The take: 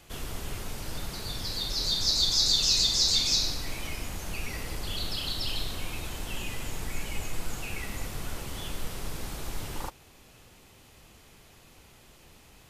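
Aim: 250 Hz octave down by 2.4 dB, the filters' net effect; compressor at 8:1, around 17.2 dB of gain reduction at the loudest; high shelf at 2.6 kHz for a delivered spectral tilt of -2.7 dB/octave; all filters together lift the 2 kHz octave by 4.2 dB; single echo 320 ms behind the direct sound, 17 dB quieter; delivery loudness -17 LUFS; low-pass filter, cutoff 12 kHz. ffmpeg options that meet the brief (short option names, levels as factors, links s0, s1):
-af "lowpass=12000,equalizer=f=250:t=o:g=-3.5,equalizer=f=2000:t=o:g=3.5,highshelf=f=2600:g=3.5,acompressor=threshold=0.0158:ratio=8,aecho=1:1:320:0.141,volume=13.3"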